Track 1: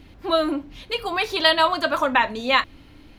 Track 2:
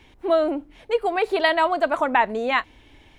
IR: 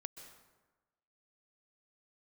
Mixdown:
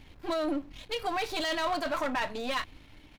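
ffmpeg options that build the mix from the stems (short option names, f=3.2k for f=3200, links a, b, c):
-filter_complex "[0:a]aeval=exprs='if(lt(val(0),0),0.251*val(0),val(0))':c=same,volume=0.5dB[a];[1:a]aecho=1:1:6.7:0.66,adelay=0.4,volume=-5.5dB[b];[a][b]amix=inputs=2:normalize=0,aeval=exprs='(tanh(3.16*val(0)+0.6)-tanh(0.6))/3.16':c=same,equalizer=f=370:w=0.56:g=-3.5,alimiter=limit=-22.5dB:level=0:latency=1:release=11"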